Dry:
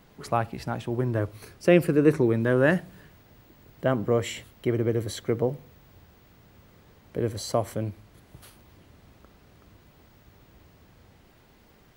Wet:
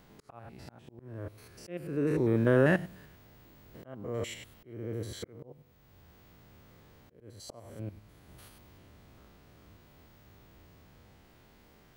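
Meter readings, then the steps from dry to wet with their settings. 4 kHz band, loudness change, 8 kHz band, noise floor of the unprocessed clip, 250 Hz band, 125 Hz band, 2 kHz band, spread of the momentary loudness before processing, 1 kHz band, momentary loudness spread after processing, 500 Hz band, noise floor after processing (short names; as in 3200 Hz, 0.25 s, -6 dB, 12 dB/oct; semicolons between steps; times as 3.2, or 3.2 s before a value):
-9.0 dB, -6.0 dB, -9.5 dB, -57 dBFS, -7.5 dB, -7.0 dB, -6.0 dB, 12 LU, -11.5 dB, 25 LU, -8.0 dB, -60 dBFS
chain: stepped spectrum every 0.1 s; auto swell 0.747 s; gain -1 dB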